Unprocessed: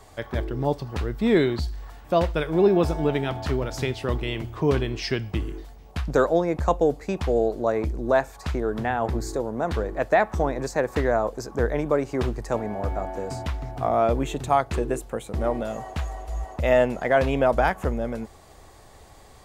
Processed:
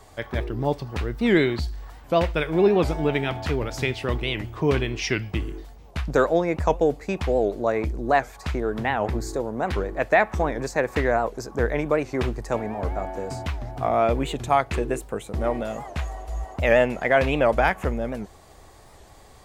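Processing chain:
dynamic equaliser 2,300 Hz, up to +7 dB, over −44 dBFS, Q 1.6
wow of a warped record 78 rpm, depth 160 cents

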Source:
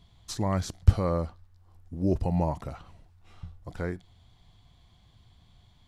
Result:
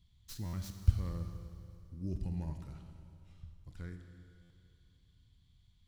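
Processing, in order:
stylus tracing distortion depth 0.1 ms
guitar amp tone stack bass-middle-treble 6-0-2
four-comb reverb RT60 2.6 s, combs from 26 ms, DRR 6 dB
buffer that repeats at 0:00.45/0:04.42, samples 512, times 6
level +4.5 dB

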